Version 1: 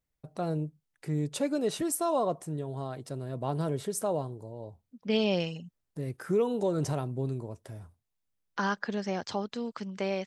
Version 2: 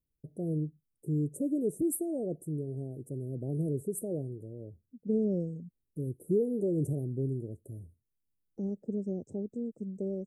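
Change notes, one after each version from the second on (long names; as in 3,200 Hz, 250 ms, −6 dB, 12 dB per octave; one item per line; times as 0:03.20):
first voice: add parametric band 340 Hz +2.5 dB 0.33 octaves
master: add inverse Chebyshev band-stop filter 1,000–4,800 Hz, stop band 50 dB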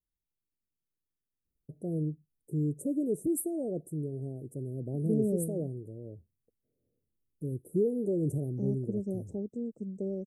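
first voice: entry +1.45 s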